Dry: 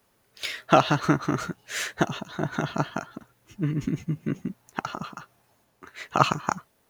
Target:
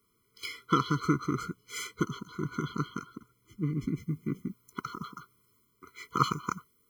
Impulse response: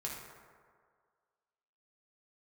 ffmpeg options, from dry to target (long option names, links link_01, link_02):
-af "asetnsamples=nb_out_samples=441:pad=0,asendcmd='3.98 highshelf g 11.5',highshelf=frequency=10000:gain=5,afftfilt=real='re*eq(mod(floor(b*sr/1024/490),2),0)':imag='im*eq(mod(floor(b*sr/1024/490),2),0)':win_size=1024:overlap=0.75,volume=-4.5dB"